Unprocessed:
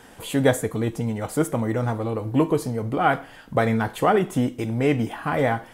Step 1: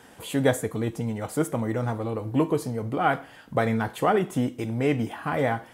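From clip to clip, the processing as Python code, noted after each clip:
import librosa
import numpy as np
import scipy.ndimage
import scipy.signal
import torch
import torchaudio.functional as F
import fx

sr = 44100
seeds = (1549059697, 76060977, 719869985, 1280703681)

y = scipy.signal.sosfilt(scipy.signal.butter(2, 58.0, 'highpass', fs=sr, output='sos'), x)
y = y * librosa.db_to_amplitude(-3.0)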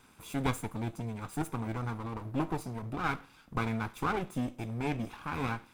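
y = fx.lower_of_two(x, sr, delay_ms=0.82)
y = y * librosa.db_to_amplitude(-8.0)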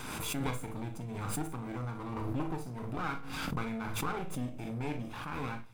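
y = fx.room_early_taps(x, sr, ms=(40, 58), db=(-9.5, -13.0))
y = fx.room_shoebox(y, sr, seeds[0], volume_m3=160.0, walls='furnished', distance_m=0.49)
y = fx.pre_swell(y, sr, db_per_s=24.0)
y = y * librosa.db_to_amplitude(-6.0)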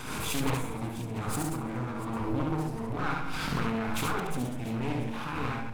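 y = fx.reverse_delay(x, sr, ms=100, wet_db=-6.0)
y = fx.echo_multitap(y, sr, ms=(71, 124, 689), db=(-3.0, -19.0, -16.0))
y = fx.doppler_dist(y, sr, depth_ms=0.39)
y = y * librosa.db_to_amplitude(2.5)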